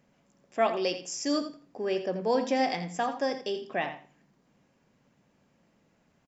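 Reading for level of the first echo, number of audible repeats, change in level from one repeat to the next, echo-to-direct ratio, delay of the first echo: -11.0 dB, 2, -14.5 dB, -11.0 dB, 84 ms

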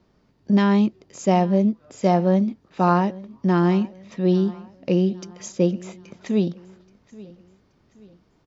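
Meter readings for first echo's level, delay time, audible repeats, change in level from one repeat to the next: -20.5 dB, 0.827 s, 2, -8.0 dB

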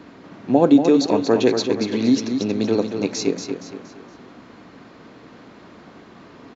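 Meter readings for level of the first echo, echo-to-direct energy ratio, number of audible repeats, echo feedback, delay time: -7.0 dB, -6.5 dB, 4, 38%, 0.234 s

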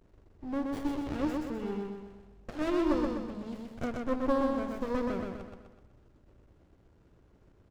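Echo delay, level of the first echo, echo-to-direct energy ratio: 0.126 s, -3.0 dB, -2.0 dB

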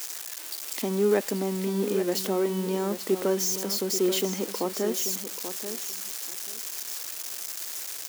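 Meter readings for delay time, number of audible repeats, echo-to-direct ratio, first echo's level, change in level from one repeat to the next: 0.835 s, 2, -10.0 dB, -10.0 dB, -15.0 dB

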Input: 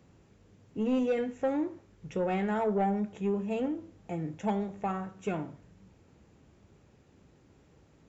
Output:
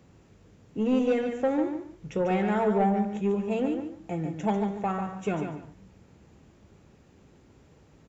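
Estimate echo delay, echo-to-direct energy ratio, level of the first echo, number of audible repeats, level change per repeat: 0.144 s, -7.0 dB, -7.0 dB, 2, -13.0 dB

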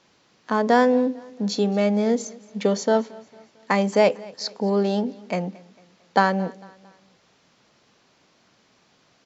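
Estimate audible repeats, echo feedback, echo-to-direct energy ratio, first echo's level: 2, 44%, -21.5 dB, -22.5 dB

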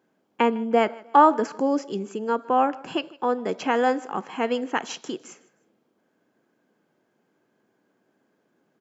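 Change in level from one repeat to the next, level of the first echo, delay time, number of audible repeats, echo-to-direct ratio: -9.5 dB, -22.0 dB, 0.155 s, 2, -21.5 dB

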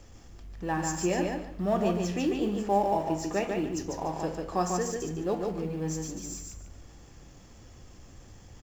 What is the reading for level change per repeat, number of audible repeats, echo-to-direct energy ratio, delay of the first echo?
-12.5 dB, 3, -3.5 dB, 0.146 s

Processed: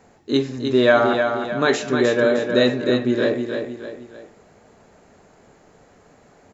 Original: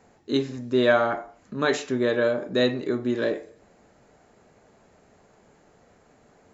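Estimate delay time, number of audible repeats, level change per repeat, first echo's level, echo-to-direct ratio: 0.308 s, 3, -7.5 dB, -6.0 dB, -5.0 dB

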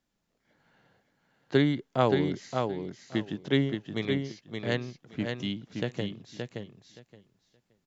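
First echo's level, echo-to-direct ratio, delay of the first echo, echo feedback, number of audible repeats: -5.0 dB, -5.0 dB, 0.572 s, 17%, 2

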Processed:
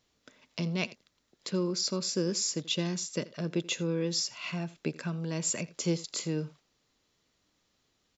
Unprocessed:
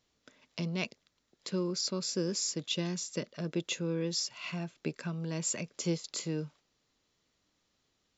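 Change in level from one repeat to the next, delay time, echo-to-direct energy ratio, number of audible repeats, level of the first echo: no steady repeat, 83 ms, -20.0 dB, 1, -20.0 dB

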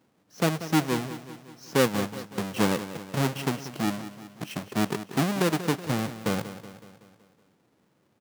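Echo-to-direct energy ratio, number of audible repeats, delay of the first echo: -11.5 dB, 5, 0.187 s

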